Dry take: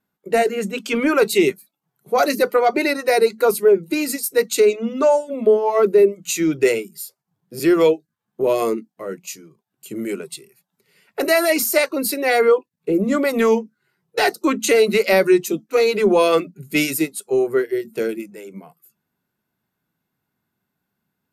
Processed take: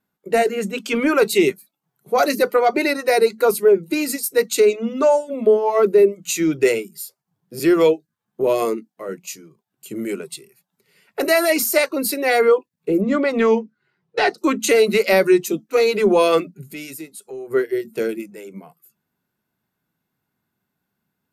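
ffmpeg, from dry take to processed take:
-filter_complex "[0:a]asettb=1/sr,asplit=3[a][b][c];[a]atrim=end=8.654[d];[b]atrim=start=8.65:end=9.09,asetpts=PTS-STARTPTS,afade=t=in:d=0.004:c=qsin,afade=t=out:st=0.436:d=0.004:c=qsin,highpass=f=210:p=1[e];[c]atrim=start=9.086[f];[d][e]acrossfade=d=0.004:c1=hsin:c2=qsin[g];[g][f]acrossfade=d=0.004:c1=qsin:c2=hsin,asettb=1/sr,asplit=3[h][i][j];[h]atrim=end=13.014[k];[i]atrim=start=13.01:end=14.38,asetpts=PTS-STARTPTS,afade=t=in:d=0.004:c=qsin,afade=t=out:st=1.366:d=0.004:c=qsin,lowpass=4.3k[l];[j]atrim=start=14.376[m];[k][l]acrossfade=d=0.004:c1=hsin:c2=qsin[n];[n][m]acrossfade=d=0.004:c1=qsin:c2=hsin,asplit=3[o][p][q];[o]afade=t=out:st=16.7:d=0.02[r];[p]acompressor=threshold=-37dB:ratio=2.5:attack=3.2:release=140:knee=1:detection=peak,afade=t=in:st=16.7:d=0.02,afade=t=out:st=17.5:d=0.02[s];[q]afade=t=in:st=17.5:d=0.02[t];[r][s][t]amix=inputs=3:normalize=0"

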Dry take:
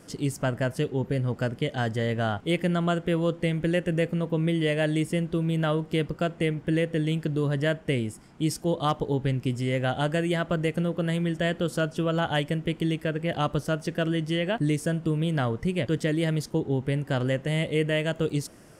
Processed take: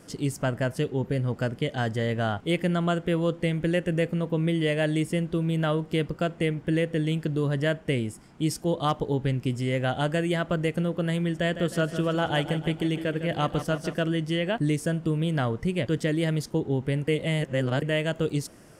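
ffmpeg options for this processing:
-filter_complex "[0:a]asettb=1/sr,asplit=3[a][b][c];[a]atrim=end=11.394[d];[b]atrim=start=11.39:end=14,asetpts=PTS-STARTPTS,afade=t=in:d=0.004:c=qsin,afade=t=out:st=2.606:d=0.004:c=qsin,aecho=1:1:156|312|468|624|780|936:0.282|0.161|0.0916|0.0522|0.0298|0.017,atrim=end_sample=115101[e];[c]atrim=start=13.996[f];[d][e]acrossfade=d=0.004:c1=hsin:c2=qsin[g];[g][f]acrossfade=d=0.004:c1=qsin:c2=hsin,asplit=3[h][i][j];[h]atrim=end=17.082[k];[i]atrim=start=17.078:end=17.822,asetpts=PTS-STARTPTS,areverse[l];[j]atrim=start=17.818[m];[k][l]acrossfade=d=0.004:c1=hsin:c2=hsin[n];[n][m]acrossfade=d=0.004:c1=hsin:c2=hsin"

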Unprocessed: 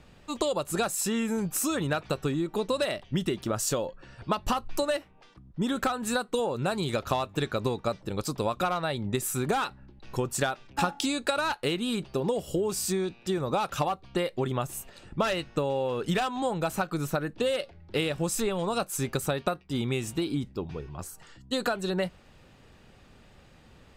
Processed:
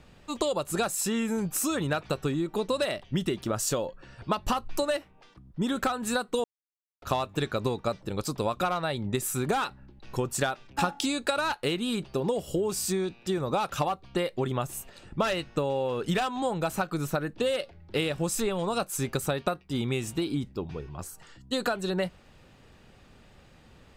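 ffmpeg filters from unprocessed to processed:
-filter_complex "[0:a]asplit=3[a][b][c];[a]atrim=end=6.44,asetpts=PTS-STARTPTS,afade=t=out:st=6.436:d=0.004:c=hsin[d];[b]atrim=start=6.44:end=7.02,asetpts=PTS-STARTPTS,volume=0[e];[c]atrim=start=7.02,asetpts=PTS-STARTPTS,afade=t=in:d=0.004:c=hsin[f];[d][e][f]concat=n=3:v=0:a=1"

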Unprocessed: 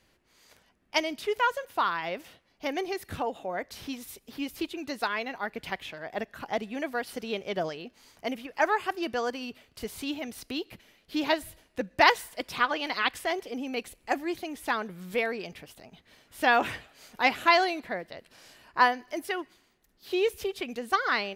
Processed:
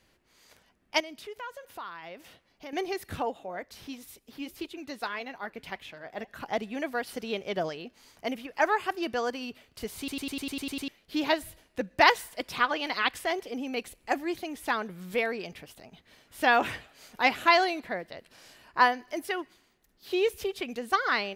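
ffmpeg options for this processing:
-filter_complex "[0:a]asettb=1/sr,asplit=3[a][b][c];[a]atrim=end=1.004[d];[b]atrim=start=1:end=2.73,asetpts=PTS-STARTPTS,afade=t=in:d=0.004:c=qsin,afade=t=out:st=1.726:d=0.004:c=qsin,acompressor=threshold=-48dB:ratio=2:attack=3.2:release=140:knee=1:detection=peak[e];[c]atrim=start=2.726[f];[d][e]acrossfade=d=0.004:c1=hsin:c2=qsin[g];[g][f]acrossfade=d=0.004:c1=qsin:c2=hsin,asplit=3[h][i][j];[h]afade=t=out:st=3.31:d=0.02[k];[i]flanger=delay=0.2:depth=6:regen=-81:speed=1.7:shape=triangular,afade=t=in:st=3.31:d=0.02,afade=t=out:st=6.26:d=0.02[l];[j]afade=t=in:st=6.26:d=0.02[m];[k][l][m]amix=inputs=3:normalize=0,asplit=10[n][o][p][q][r][s][t][u][v][w];[n]atrim=end=10.082[x];[o]atrim=start=9.978:end=10.082[y];[p]atrim=start=9.978:end=10.082[z];[q]atrim=start=9.978:end=10.082[aa];[r]atrim=start=9.978:end=10.082[ab];[s]atrim=start=9.978:end=10.082[ac];[t]atrim=start=9.978:end=10.082[ad];[u]atrim=start=9.978:end=10.082[ae];[v]atrim=start=9.978:end=10.082[af];[w]atrim=start=10.878[ag];[x][y]acrossfade=d=0.004:c1=hsin:c2=hsin[ah];[ah][z]acrossfade=d=0.004:c1=hsin:c2=hsin[ai];[ai][aa]acrossfade=d=0.004:c1=hsin:c2=hsin[aj];[aj][ab]acrossfade=d=0.004:c1=hsin:c2=hsin[ak];[ak][ac]acrossfade=d=0.004:c1=hsin:c2=hsin[al];[al][ad]acrossfade=d=0.004:c1=hsin:c2=hsin[am];[am][ae]acrossfade=d=0.004:c1=hsin:c2=hsin[an];[an][af]acrossfade=d=0.004:c1=hsin:c2=hsin[ao];[ao][ag]acrossfade=d=0.004:c1=hsin:c2=hsin"

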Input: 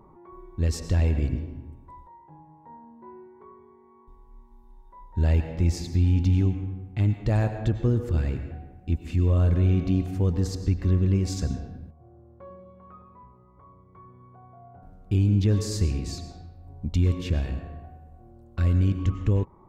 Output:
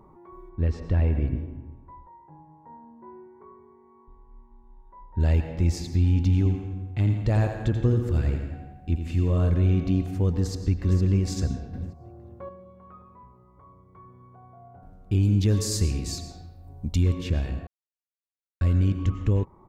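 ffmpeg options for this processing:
-filter_complex "[0:a]asettb=1/sr,asplit=3[a][b][c];[a]atrim=end=0.494[d];[b]atrim=start=0.49:end=5.2,asetpts=PTS-STARTPTS,afade=t=in:d=0.004:c=qsin,afade=t=out:st=4.706:d=0.004:c=qsin,lowpass=2.2k[e];[c]atrim=start=5.196[f];[d][e]acrossfade=d=0.004:c1=hsin:c2=qsin[g];[g][f]acrossfade=d=0.004:c1=qsin:c2=hsin,asettb=1/sr,asplit=3[h][i][j];[h]atrim=end=6.374[k];[i]atrim=start=6.37:end=9.5,asetpts=PTS-STARTPTS,afade=t=in:d=0.004:c=qsin,afade=t=out:st=3.126:d=0.004:c=qsin,aecho=1:1:85|170|255|340|425|510:0.398|0.203|0.104|0.0528|0.0269|0.0137,atrim=end_sample=138033[l];[j]atrim=start=9.496[m];[k][l]acrossfade=d=0.004:c1=hsin:c2=qsin[n];[n][m]acrossfade=d=0.004:c1=qsin:c2=hsin,asplit=2[o][p];[p]afade=t=in:st=10.42:d=0.01,afade=t=out:st=11.01:d=0.01,aecho=0:1:460|920|1380:0.334965|0.0669931|0.0133986[q];[o][q]amix=inputs=2:normalize=0,asettb=1/sr,asplit=3[r][s][t];[r]atrim=end=11.734[u];[s]atrim=start=11.73:end=12.49,asetpts=PTS-STARTPTS,afade=t=in:d=0.004:c=qsin,afade=t=out:st=0.756:d=0.004:c=qsin,acontrast=54[v];[t]atrim=start=12.486[w];[u][v]acrossfade=d=0.004:c1=hsin:c2=qsin[x];[x][w]acrossfade=d=0.004:c1=qsin:c2=hsin,asettb=1/sr,asplit=3[y][z][aa];[y]atrim=end=15.234[ab];[z]atrim=start=15.23:end=17.03,asetpts=PTS-STARTPTS,afade=t=in:d=0.004:c=qsin,afade=t=out:st=1.796:d=0.004:c=qsin,highshelf=f=5.5k:g=10[ac];[aa]atrim=start=17.026[ad];[ab][ac]acrossfade=d=0.004:c1=hsin:c2=qsin[ae];[ae][ad]acrossfade=d=0.004:c1=qsin:c2=hsin,asplit=3[af][ag][ah];[af]atrim=end=17.67,asetpts=PTS-STARTPTS,afade=t=out:st=17.666:d=0.004:c=hsin[ai];[ag]atrim=start=17.67:end=18.61,asetpts=PTS-STARTPTS,volume=0[aj];[ah]atrim=start=18.61,asetpts=PTS-STARTPTS,afade=t=in:d=0.004:c=hsin[ak];[ai][aj][ak]concat=n=3:v=0:a=1"

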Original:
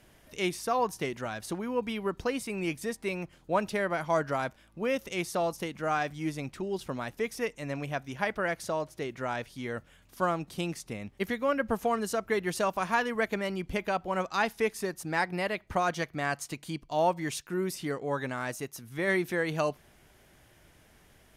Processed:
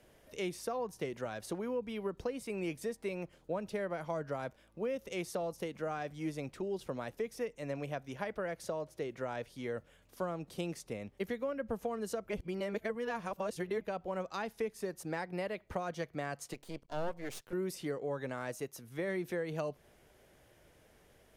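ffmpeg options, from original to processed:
-filter_complex "[0:a]asettb=1/sr,asplit=3[a][b][c];[a]atrim=end=16.534[d];[b]atrim=start=16.53:end=17.53,asetpts=PTS-STARTPTS,afade=t=in:d=0.004:c=qsin,afade=t=out:st=0.996:d=0.004:c=qsin,aeval=exprs='max(val(0),0)':c=same[e];[c]atrim=start=17.526[f];[d][e]acrossfade=d=0.004:c1=hsin:c2=qsin[g];[g][f]acrossfade=d=0.004:c1=qsin:c2=hsin,asplit=3[h][i][j];[h]atrim=end=12.292[k];[i]atrim=start=12.288:end=13.812,asetpts=PTS-STARTPTS,areverse[l];[j]atrim=start=13.808[m];[k][l]acrossfade=d=0.004:c1=hsin:c2=hsin[n];[n][m]acrossfade=d=0.004:c1=hsin:c2=hsin,equalizer=f=500:w=1.7:g=8.5,acrossover=split=230[o][p];[p]acompressor=threshold=-29dB:ratio=6[q];[o][q]amix=inputs=2:normalize=0,volume=-6dB"

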